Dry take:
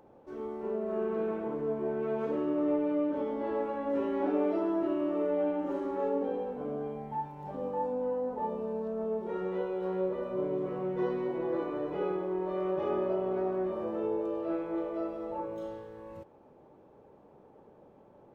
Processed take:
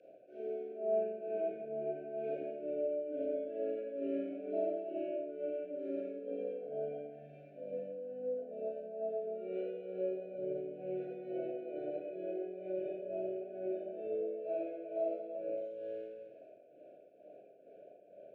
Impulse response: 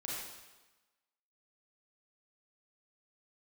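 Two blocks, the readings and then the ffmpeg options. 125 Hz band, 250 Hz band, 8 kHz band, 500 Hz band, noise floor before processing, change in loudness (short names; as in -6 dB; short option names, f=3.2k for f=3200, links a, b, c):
-13.5 dB, -11.5 dB, n/a, -5.0 dB, -58 dBFS, -6.5 dB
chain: -filter_complex "[0:a]acrossover=split=280[a][b];[b]acompressor=threshold=-40dB:ratio=6[c];[a][c]amix=inputs=2:normalize=0,asplit=3[d][e][f];[d]bandpass=f=730:t=q:w=8,volume=0dB[g];[e]bandpass=f=1.09k:t=q:w=8,volume=-6dB[h];[f]bandpass=f=2.44k:t=q:w=8,volume=-9dB[i];[g][h][i]amix=inputs=3:normalize=0,tremolo=f=2.2:d=0.84,asuperstop=centerf=1000:order=20:qfactor=1.3[j];[1:a]atrim=start_sample=2205[k];[j][k]afir=irnorm=-1:irlink=0,volume=17dB"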